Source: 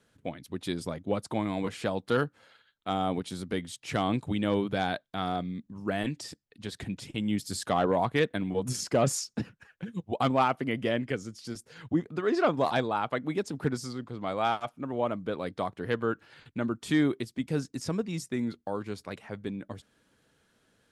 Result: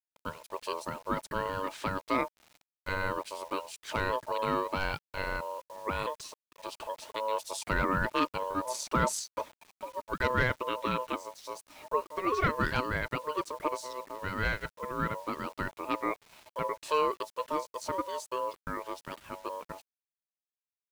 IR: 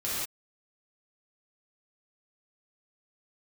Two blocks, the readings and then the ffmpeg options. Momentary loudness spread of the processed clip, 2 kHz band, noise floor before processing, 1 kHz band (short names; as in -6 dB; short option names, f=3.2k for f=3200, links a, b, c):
13 LU, +3.0 dB, -71 dBFS, +0.5 dB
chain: -af "aeval=exprs='val(0)*sin(2*PI*760*n/s)':c=same,acrusher=bits=8:mix=0:aa=0.000001"